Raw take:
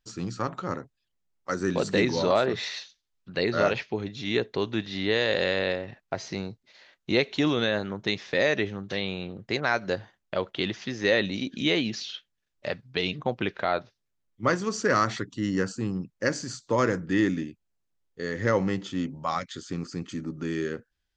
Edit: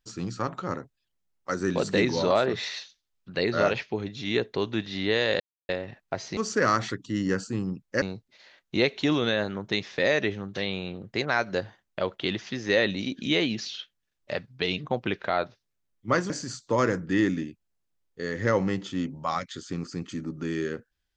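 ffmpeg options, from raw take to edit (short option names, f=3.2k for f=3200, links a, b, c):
-filter_complex "[0:a]asplit=6[a][b][c][d][e][f];[a]atrim=end=5.4,asetpts=PTS-STARTPTS,afade=t=out:st=5.396:d=0.004:c=hsin[g];[b]atrim=start=5.4:end=5.69,asetpts=PTS-STARTPTS,volume=0[h];[c]atrim=start=5.69:end=6.372,asetpts=PTS-STARTPTS,afade=t=in:d=0.004:c=hsin[i];[d]atrim=start=14.648:end=16.302[j];[e]atrim=start=6.368:end=14.652[k];[f]atrim=start=16.298[l];[g][h][i]concat=n=3:v=0:a=1[m];[m][j]acrossfade=d=0.004:c1=hsin:c2=hsin[n];[n][k]acrossfade=d=0.004:c1=hsin:c2=hsin[o];[o][l]acrossfade=d=0.004:c1=hsin:c2=hsin"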